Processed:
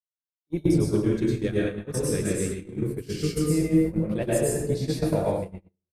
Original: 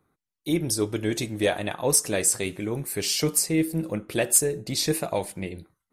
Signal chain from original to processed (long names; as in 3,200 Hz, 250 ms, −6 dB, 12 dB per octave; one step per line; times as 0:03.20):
0:01.00–0:03.38: flat-topped bell 760 Hz −14 dB 1 octave
single-tap delay 89 ms −23 dB
dense smooth reverb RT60 1.2 s, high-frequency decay 0.6×, pre-delay 90 ms, DRR −5.5 dB
noise gate −21 dBFS, range −53 dB
spectral tilt −3 dB per octave
level −7.5 dB